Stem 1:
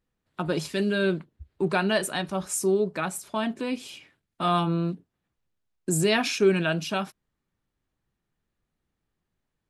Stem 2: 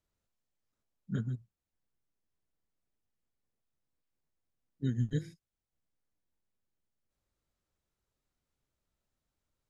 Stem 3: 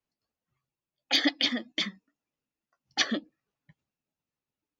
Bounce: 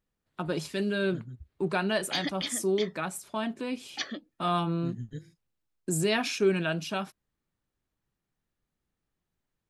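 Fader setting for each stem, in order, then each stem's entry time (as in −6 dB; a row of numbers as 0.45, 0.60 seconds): −4.0, −7.5, −8.0 decibels; 0.00, 0.00, 1.00 seconds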